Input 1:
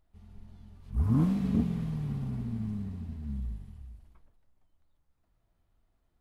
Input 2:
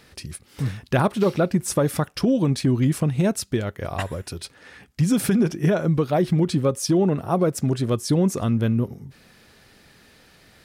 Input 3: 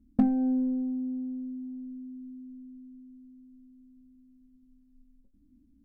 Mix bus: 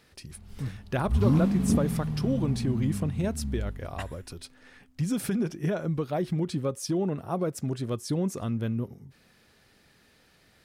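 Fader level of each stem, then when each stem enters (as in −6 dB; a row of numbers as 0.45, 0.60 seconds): +3.0, −8.5, −19.5 decibels; 0.15, 0.00, 2.15 seconds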